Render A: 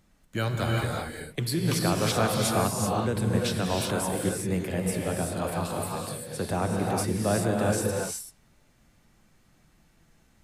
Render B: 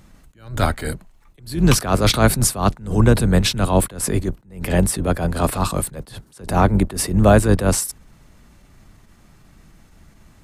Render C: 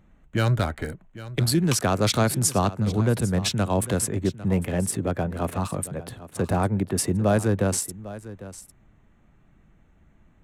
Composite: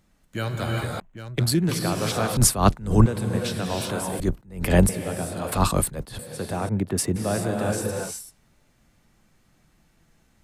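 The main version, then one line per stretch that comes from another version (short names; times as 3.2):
A
1–1.69 from C
2.37–3.06 from B
4.2–4.89 from B
5.52–6.19 from B
6.69–7.16 from C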